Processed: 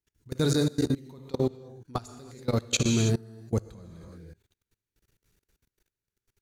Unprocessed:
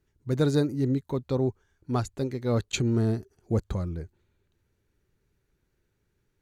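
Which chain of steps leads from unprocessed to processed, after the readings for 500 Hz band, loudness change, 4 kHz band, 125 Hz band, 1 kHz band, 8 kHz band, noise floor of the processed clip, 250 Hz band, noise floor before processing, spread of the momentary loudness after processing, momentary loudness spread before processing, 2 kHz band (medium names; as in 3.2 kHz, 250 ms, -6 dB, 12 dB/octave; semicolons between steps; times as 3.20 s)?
-2.0 dB, -0.5 dB, +5.5 dB, -2.0 dB, -2.0 dB, +7.5 dB, under -85 dBFS, -1.5 dB, -75 dBFS, 22 LU, 8 LU, +2.0 dB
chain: treble shelf 2.3 kHz +12 dB; gated-style reverb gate 350 ms flat, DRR 4 dB; dynamic bell 170 Hz, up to +5 dB, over -39 dBFS, Q 3.3; level held to a coarse grid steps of 23 dB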